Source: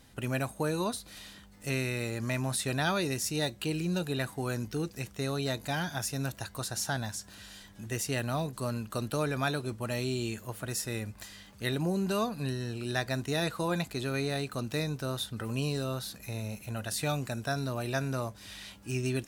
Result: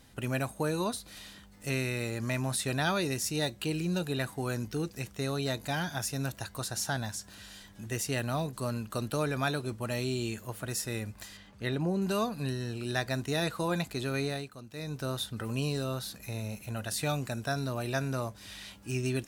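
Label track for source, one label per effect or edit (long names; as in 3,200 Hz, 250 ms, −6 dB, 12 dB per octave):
11.370000	12.020000	low-pass filter 2,800 Hz 6 dB per octave
14.250000	15.020000	duck −12.5 dB, fades 0.28 s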